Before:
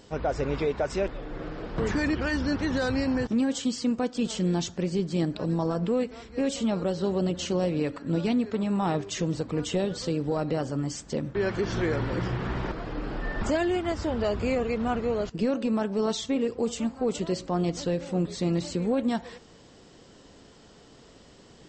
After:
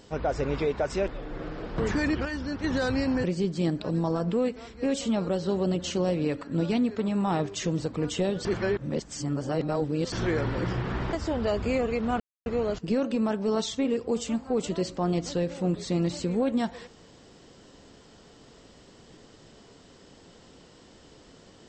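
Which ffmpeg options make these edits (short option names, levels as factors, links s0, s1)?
-filter_complex "[0:a]asplit=8[s0][s1][s2][s3][s4][s5][s6][s7];[s0]atrim=end=2.252[s8];[s1]atrim=start=2.248:end=2.642,asetpts=PTS-STARTPTS,volume=0.531[s9];[s2]atrim=start=2.638:end=3.242[s10];[s3]atrim=start=4.788:end=10.002[s11];[s4]atrim=start=9.998:end=11.672,asetpts=PTS-STARTPTS,areverse[s12];[s5]atrim=start=11.668:end=12.682[s13];[s6]atrim=start=13.898:end=14.97,asetpts=PTS-STARTPTS,afade=t=out:st=1.068:d=0.004:c=hsin,apad=pad_dur=0.26[s14];[s7]atrim=start=14.97,asetpts=PTS-STARTPTS,afade=t=in:d=0.004:c=hsin[s15];[s8][s9]acrossfade=d=0.004:c1=hsin:c2=hsin[s16];[s16][s10]acrossfade=d=0.004:c1=hsin:c2=hsin[s17];[s17][s11]acrossfade=d=0.004:c1=hsin:c2=hsin[s18];[s18][s12]acrossfade=d=0.004:c1=hsin:c2=hsin[s19];[s19][s13]acrossfade=d=0.004:c1=hsin:c2=hsin[s20];[s14][s15]concat=n=2:v=0:a=1[s21];[s20][s21]acrossfade=d=0.004:c1=hsin:c2=hsin"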